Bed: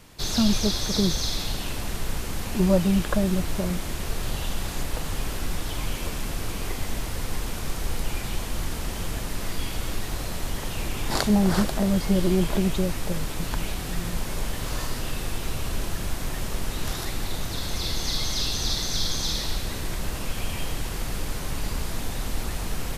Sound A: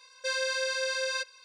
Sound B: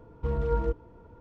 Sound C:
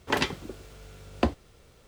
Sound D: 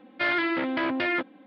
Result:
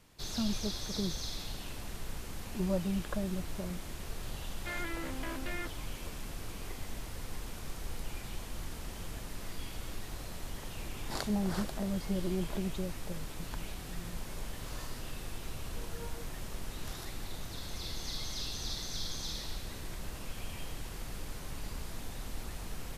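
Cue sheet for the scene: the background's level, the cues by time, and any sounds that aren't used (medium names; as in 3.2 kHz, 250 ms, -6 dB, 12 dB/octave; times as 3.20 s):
bed -12 dB
4.46 s: add D -14.5 dB
15.51 s: add B -16.5 dB + high-pass 450 Hz
not used: A, C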